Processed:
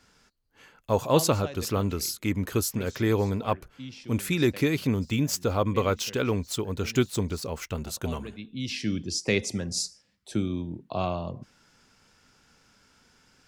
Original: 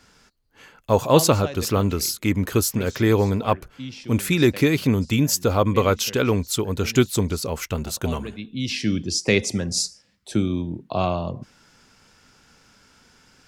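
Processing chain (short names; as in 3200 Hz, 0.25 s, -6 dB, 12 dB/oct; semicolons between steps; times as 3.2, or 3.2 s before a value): 4.93–7.75 median filter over 3 samples; gain -6 dB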